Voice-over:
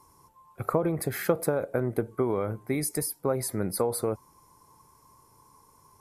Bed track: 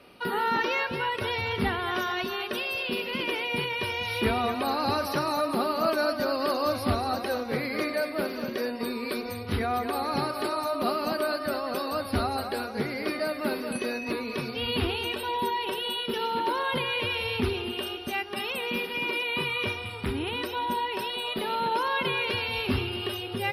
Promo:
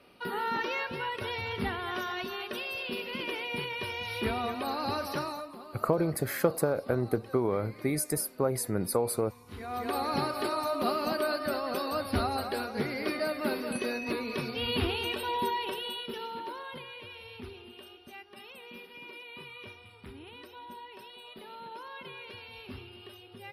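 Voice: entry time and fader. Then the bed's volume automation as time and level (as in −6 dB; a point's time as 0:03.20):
5.15 s, −1.0 dB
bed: 0:05.22 −5.5 dB
0:05.59 −20.5 dB
0:09.44 −20.5 dB
0:09.89 −2 dB
0:15.49 −2 dB
0:17.00 −17 dB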